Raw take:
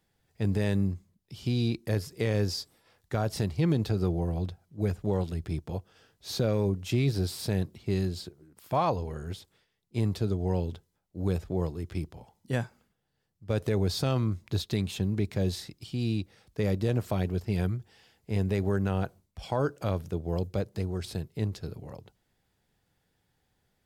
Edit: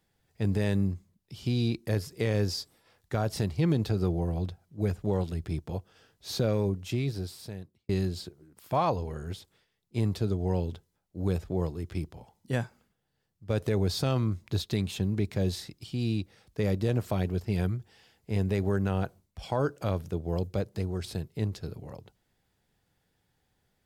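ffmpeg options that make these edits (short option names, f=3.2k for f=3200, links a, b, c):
-filter_complex "[0:a]asplit=2[a][b];[a]atrim=end=7.89,asetpts=PTS-STARTPTS,afade=t=out:st=6.52:d=1.37[c];[b]atrim=start=7.89,asetpts=PTS-STARTPTS,afade=t=in:d=0.004:c=hsin[d];[c][d]concat=n=2:v=0:a=1"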